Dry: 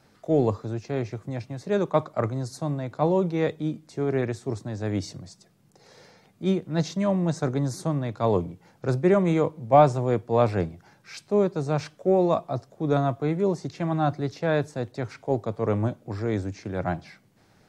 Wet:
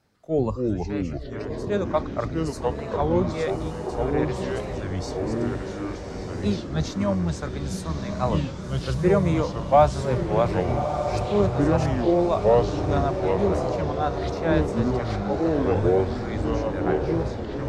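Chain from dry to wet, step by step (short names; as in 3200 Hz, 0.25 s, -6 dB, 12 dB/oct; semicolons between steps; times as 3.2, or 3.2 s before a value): octaver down 1 oct, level -6 dB; spectral noise reduction 9 dB; echoes that change speed 0.199 s, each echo -4 st, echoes 2; diffused feedback echo 1.205 s, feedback 55%, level -6.5 dB; record warp 33 1/3 rpm, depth 160 cents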